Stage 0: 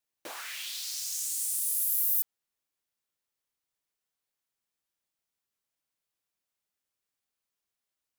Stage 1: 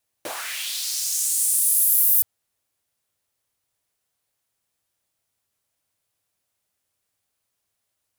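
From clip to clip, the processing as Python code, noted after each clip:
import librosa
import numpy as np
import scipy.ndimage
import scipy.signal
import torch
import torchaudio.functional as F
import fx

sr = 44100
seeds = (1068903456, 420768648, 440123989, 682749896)

y = fx.graphic_eq_15(x, sr, hz=(100, 630, 10000), db=(11, 4, 4))
y = F.gain(torch.from_numpy(y), 8.0).numpy()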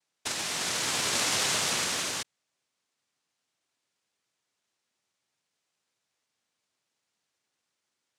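y = fx.noise_vocoder(x, sr, seeds[0], bands=1)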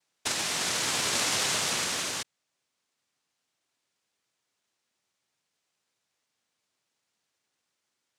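y = fx.rider(x, sr, range_db=5, speed_s=2.0)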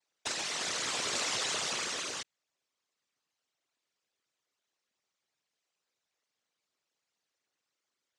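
y = fx.envelope_sharpen(x, sr, power=2.0)
y = F.gain(torch.from_numpy(y), -5.5).numpy()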